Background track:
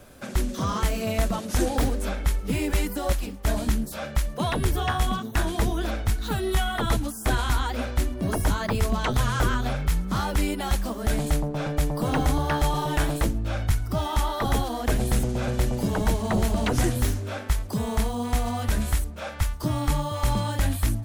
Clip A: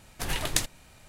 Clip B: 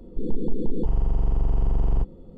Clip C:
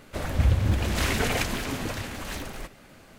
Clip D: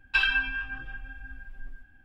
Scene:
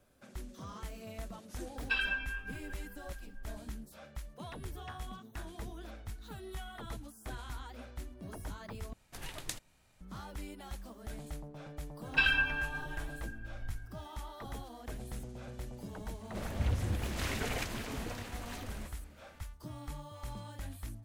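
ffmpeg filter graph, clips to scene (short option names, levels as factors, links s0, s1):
-filter_complex "[4:a]asplit=2[s0][s1];[0:a]volume=0.106,asplit=2[s2][s3];[s2]atrim=end=8.934[s4];[1:a]atrim=end=1.08,asetpts=PTS-STARTPTS,volume=0.2[s5];[s3]atrim=start=10.006[s6];[s0]atrim=end=2.04,asetpts=PTS-STARTPTS,volume=0.376,afade=t=in:d=0.004:c=hsin,afade=t=out:st=2.036:d=0.004:c=hsin,adelay=1760[s7];[s1]atrim=end=2.04,asetpts=PTS-STARTPTS,volume=0.668,afade=t=in:d=0.004:c=hsin,afade=t=out:st=2.036:d=0.004:c=hsin,adelay=12030[s8];[3:a]atrim=end=3.18,asetpts=PTS-STARTPTS,volume=0.299,afade=t=in:d=0.004:c=hsin,afade=t=out:st=3.176:d=0.004:c=hsin,adelay=16210[s9];[s4][s5]acrossfade=d=0.004:c1=hsin:c2=hsin[s10];[s10][s6]acrossfade=d=0.004:c1=hsin:c2=hsin[s11];[s11][s7][s8][s9]amix=inputs=4:normalize=0"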